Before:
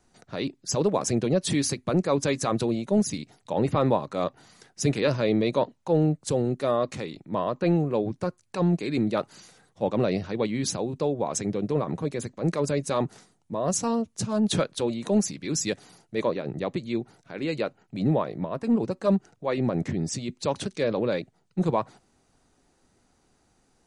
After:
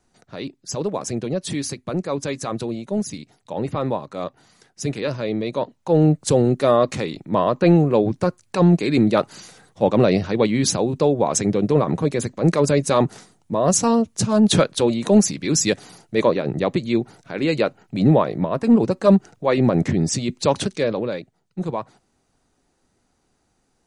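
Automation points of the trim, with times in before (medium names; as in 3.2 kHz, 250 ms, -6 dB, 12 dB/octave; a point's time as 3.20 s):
5.51 s -1 dB
6.13 s +8.5 dB
20.61 s +8.5 dB
21.20 s -1.5 dB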